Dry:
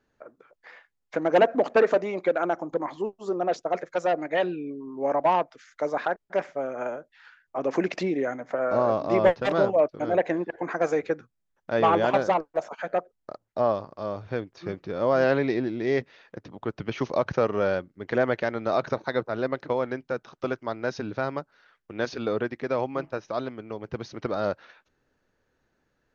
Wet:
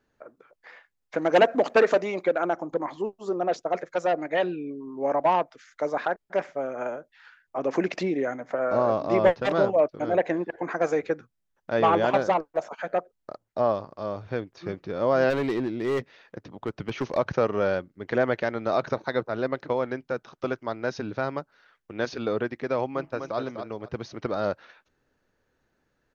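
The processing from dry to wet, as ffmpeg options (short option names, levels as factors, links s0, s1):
-filter_complex "[0:a]asettb=1/sr,asplit=3[s0][s1][s2];[s0]atrim=end=1.184[s3];[s1]atrim=start=1.18:end=2.23,asetpts=PTS-STARTPTS,afade=t=in:d=0.004:c=qsin,afade=t=out:st=1.046:d=0.004:c=qsin,highshelf=f=2200:g=7[s4];[s2]atrim=start=2.226[s5];[s3][s4]acrossfade=d=0.004:c1=hsin:c2=qsin[s6];[s6][s5]acrossfade=d=0.004:c1=qsin:c2=hsin,asplit=3[s7][s8][s9];[s7]afade=t=out:st=15.29:d=0.02[s10];[s8]asoftclip=type=hard:threshold=0.0841,afade=t=in:st=15.29:d=0.02,afade=t=out:st=17.16:d=0.02[s11];[s9]afade=t=in:st=17.16:d=0.02[s12];[s10][s11][s12]amix=inputs=3:normalize=0,asplit=2[s13][s14];[s14]afade=t=in:st=22.88:d=0.01,afade=t=out:st=23.38:d=0.01,aecho=0:1:250|500|750:0.446684|0.0893367|0.0178673[s15];[s13][s15]amix=inputs=2:normalize=0"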